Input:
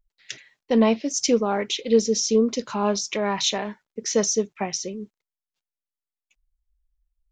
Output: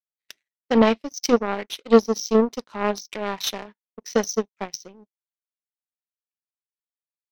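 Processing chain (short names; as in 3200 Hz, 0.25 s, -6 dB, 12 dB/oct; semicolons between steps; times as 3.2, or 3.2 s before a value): FFT band-pass 160–6300 Hz; power-law curve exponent 2; gain +6.5 dB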